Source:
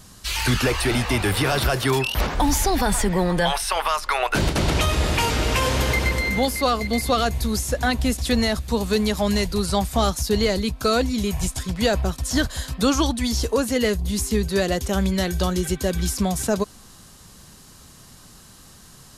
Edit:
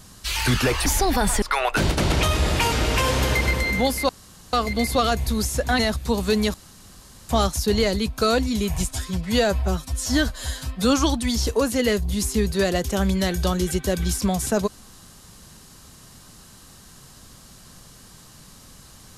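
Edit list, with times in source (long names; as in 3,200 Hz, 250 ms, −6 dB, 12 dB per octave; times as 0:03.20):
0:00.86–0:02.51: remove
0:03.07–0:04.00: remove
0:06.67: splice in room tone 0.44 s
0:07.93–0:08.42: remove
0:09.17–0:09.92: fill with room tone
0:11.54–0:12.87: time-stretch 1.5×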